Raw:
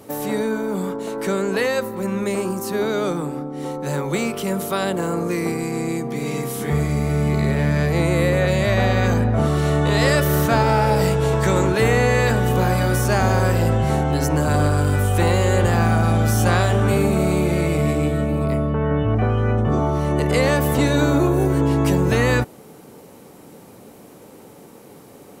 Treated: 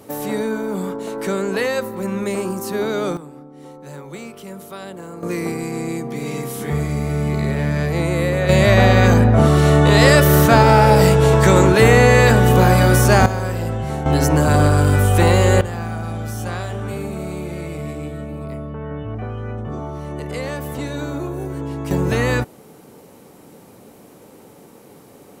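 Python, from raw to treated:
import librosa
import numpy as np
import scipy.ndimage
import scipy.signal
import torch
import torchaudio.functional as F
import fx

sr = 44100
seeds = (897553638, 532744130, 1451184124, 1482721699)

y = fx.gain(x, sr, db=fx.steps((0.0, 0.0), (3.17, -11.5), (5.23, -1.0), (8.49, 6.0), (13.26, -5.0), (14.06, 4.0), (15.61, -9.0), (21.91, -1.0)))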